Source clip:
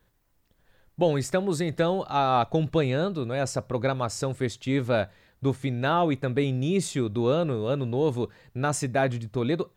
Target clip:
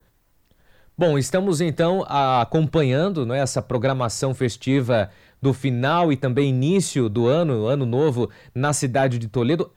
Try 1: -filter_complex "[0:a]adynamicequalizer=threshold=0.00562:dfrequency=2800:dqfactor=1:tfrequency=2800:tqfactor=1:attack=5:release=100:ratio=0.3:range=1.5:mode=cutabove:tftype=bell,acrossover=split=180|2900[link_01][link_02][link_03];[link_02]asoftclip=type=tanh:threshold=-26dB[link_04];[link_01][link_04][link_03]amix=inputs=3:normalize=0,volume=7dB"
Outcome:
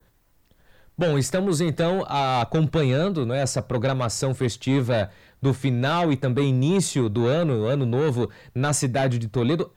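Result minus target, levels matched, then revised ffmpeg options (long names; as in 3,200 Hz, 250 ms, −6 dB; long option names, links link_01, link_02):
soft clipping: distortion +7 dB
-filter_complex "[0:a]adynamicequalizer=threshold=0.00562:dfrequency=2800:dqfactor=1:tfrequency=2800:tqfactor=1:attack=5:release=100:ratio=0.3:range=1.5:mode=cutabove:tftype=bell,acrossover=split=180|2900[link_01][link_02][link_03];[link_02]asoftclip=type=tanh:threshold=-18.5dB[link_04];[link_01][link_04][link_03]amix=inputs=3:normalize=0,volume=7dB"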